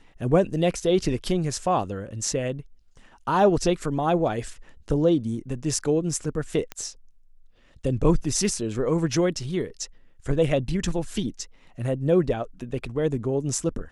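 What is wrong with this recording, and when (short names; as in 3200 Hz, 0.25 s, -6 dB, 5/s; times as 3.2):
6.72 pop -17 dBFS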